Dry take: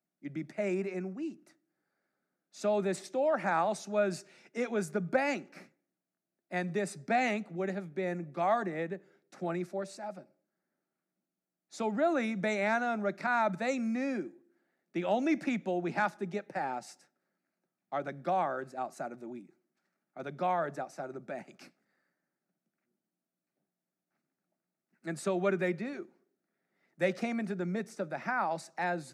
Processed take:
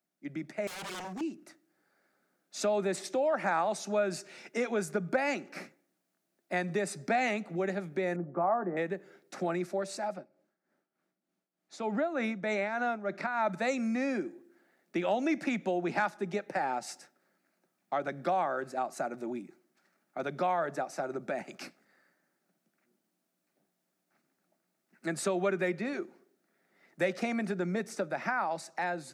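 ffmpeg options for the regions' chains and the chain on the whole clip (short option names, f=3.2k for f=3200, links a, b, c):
-filter_complex "[0:a]asettb=1/sr,asplit=3[a][b][c];[a]atrim=end=0.674[d];[b]atrim=start=0.67:end=1.21,asetpts=PTS-STARTPTS,afade=t=in:d=0.004:c=qsin,afade=t=out:st=0.536:d=0.004:c=qsin,equalizer=f=6.3k:w=0.7:g=13,aeval=exprs='0.01*(abs(mod(val(0)/0.01+3,4)-2)-1)':c=same[e];[c]atrim=start=1.206[f];[d][e]acrossfade=d=0.004:c1=hsin:c2=qsin[g];[g][f]acrossfade=d=0.004:c1=qsin:c2=hsin,asettb=1/sr,asplit=3[h][i][j];[h]atrim=end=8.164[k];[i]atrim=start=8.16:end=8.77,asetpts=PTS-STARTPTS,afade=t=in:d=0.004:c=qsin,afade=t=out:st=0.606:d=0.004:c=qsin,lowpass=f=1.3k:w=0.5412,lowpass=f=1.3k:w=1.3066,asplit=2[l][m];[m]adelay=17,volume=-12.5dB[n];[l][n]amix=inputs=2:normalize=0,atrim=end_sample=26901[o];[j]atrim=start=8.766[p];[k][o]acrossfade=d=0.004:c1=hsin:c2=qsin[q];[q][p]acrossfade=d=0.004:c1=qsin:c2=hsin,asettb=1/sr,asplit=3[r][s][t];[r]atrim=end=10.144[u];[s]atrim=start=10.14:end=13.47,asetpts=PTS-STARTPTS,afade=t=in:d=0.004:c=qsin,afade=t=out:st=3.326:d=0.004:c=qsin,lowpass=f=3.6k:p=1,tremolo=f=3.3:d=0.71[v];[t]atrim=start=13.466[w];[u][v]acrossfade=d=0.004:c1=hsin:c2=qsin[x];[x][w]acrossfade=d=0.004:c1=qsin:c2=hsin,dynaudnorm=f=350:g=7:m=6.5dB,lowshelf=f=150:g=-10,acompressor=threshold=-37dB:ratio=2,volume=3.5dB"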